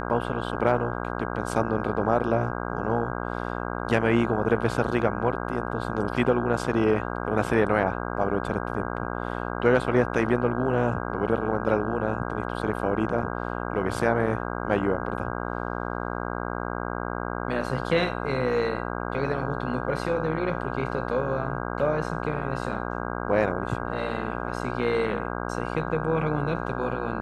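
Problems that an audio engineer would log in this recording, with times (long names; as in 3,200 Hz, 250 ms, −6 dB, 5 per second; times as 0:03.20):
mains buzz 60 Hz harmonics 27 −31 dBFS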